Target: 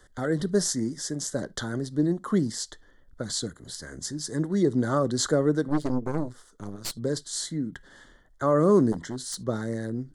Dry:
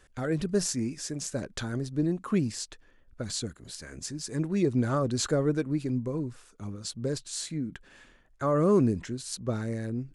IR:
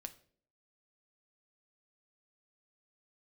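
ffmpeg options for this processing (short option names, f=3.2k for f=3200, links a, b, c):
-filter_complex "[0:a]asplit=2[a][b];[1:a]atrim=start_sample=2205,atrim=end_sample=3528[c];[b][c]afir=irnorm=-1:irlink=0,volume=-1.5dB[d];[a][d]amix=inputs=2:normalize=0,acrossover=split=150|3000[e][f][g];[e]acompressor=threshold=-47dB:ratio=2[h];[h][f][g]amix=inputs=3:normalize=0,asettb=1/sr,asplit=3[i][j][k];[i]atrim=end=8.924[l];[j]atrim=start=8.92:end=9.42,asetpts=PTS-STARTPTS,afade=t=in:d=0.004:c=qsin,afade=t=out:st=0.496:d=0.004:c=qsin,aeval=exprs='0.0501*(abs(mod(val(0)/0.0501+3,4)-2)-1)':c=same[m];[k]atrim=start=9.416[n];[l][m]acrossfade=d=0.004:c1=hsin:c2=qsin[o];[o][n]acrossfade=d=0.004:c1=qsin:c2=hsin,asuperstop=centerf=2500:order=8:qfactor=2.6,asettb=1/sr,asplit=3[p][q][r];[p]atrim=end=5.684[s];[q]atrim=start=5.68:end=6.98,asetpts=PTS-STARTPTS,afade=t=in:d=0.004:c=qsin,afade=t=out:st=1.296:d=0.004:c=qsin,aeval=exprs='0.168*(cos(1*acos(clip(val(0)/0.168,-1,1)))-cos(1*PI/2))+0.015*(cos(3*acos(clip(val(0)/0.168,-1,1)))-cos(3*PI/2))+0.0133*(cos(5*acos(clip(val(0)/0.168,-1,1)))-cos(5*PI/2))+0.0335*(cos(6*acos(clip(val(0)/0.168,-1,1)))-cos(6*PI/2))+0.00944*(cos(7*acos(clip(val(0)/0.168,-1,1)))-cos(7*PI/2))':c=same[t];[r]atrim=start=6.976[u];[s][t]acrossfade=d=0.004:c1=hsin:c2=qsin[v];[v][u]acrossfade=d=0.004:c1=qsin:c2=hsin"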